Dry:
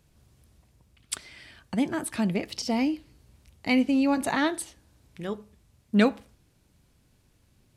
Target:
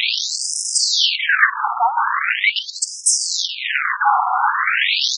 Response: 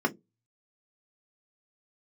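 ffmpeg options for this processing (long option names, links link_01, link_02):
-filter_complex "[0:a]aeval=exprs='val(0)+0.5*0.0266*sgn(val(0))':channel_layout=same,asplit=2[link_01][link_02];[link_02]adelay=24,volume=-12dB[link_03];[link_01][link_03]amix=inputs=2:normalize=0,atempo=1.5,asplit=2[link_04][link_05];[link_05]asoftclip=type=hard:threshold=-23dB,volume=-6.5dB[link_06];[link_04][link_06]amix=inputs=2:normalize=0,bandreject=frequency=54.42:width_type=h:width=4,bandreject=frequency=108.84:width_type=h:width=4,bandreject=frequency=163.26:width_type=h:width=4,bandreject=frequency=217.68:width_type=h:width=4,areverse,acompressor=threshold=-31dB:ratio=8,areverse,asplit=2[link_07][link_08];[link_08]highpass=frequency=720:poles=1,volume=23dB,asoftclip=type=tanh:threshold=-23dB[link_09];[link_07][link_09]amix=inputs=2:normalize=0,lowpass=frequency=2200:poles=1,volume=-6dB,alimiter=level_in=35.5dB:limit=-1dB:release=50:level=0:latency=1,afftfilt=real='re*between(b*sr/1024,990*pow(7200/990,0.5+0.5*sin(2*PI*0.41*pts/sr))/1.41,990*pow(7200/990,0.5+0.5*sin(2*PI*0.41*pts/sr))*1.41)':imag='im*between(b*sr/1024,990*pow(7200/990,0.5+0.5*sin(2*PI*0.41*pts/sr))/1.41,990*pow(7200/990,0.5+0.5*sin(2*PI*0.41*pts/sr))*1.41)':win_size=1024:overlap=0.75,volume=-1dB"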